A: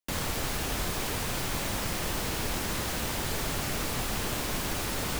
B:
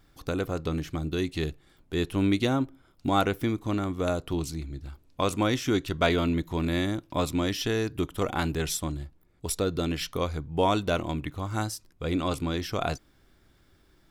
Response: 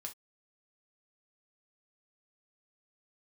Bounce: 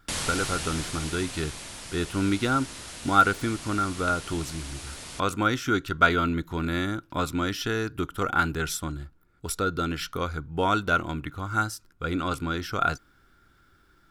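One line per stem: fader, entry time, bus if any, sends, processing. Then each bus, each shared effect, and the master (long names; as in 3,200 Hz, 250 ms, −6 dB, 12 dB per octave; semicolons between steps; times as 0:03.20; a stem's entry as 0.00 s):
−1.0 dB, 0.00 s, send −17.5 dB, Chebyshev low-pass filter 11,000 Hz, order 6; high-shelf EQ 2,200 Hz +9 dB; automatic ducking −14 dB, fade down 1.75 s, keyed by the second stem
−1.0 dB, 0.00 s, no send, parametric band 610 Hz −4 dB 0.42 octaves; hollow resonant body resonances 1,400 Hz, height 16 dB, ringing for 20 ms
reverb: on, pre-delay 3 ms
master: no processing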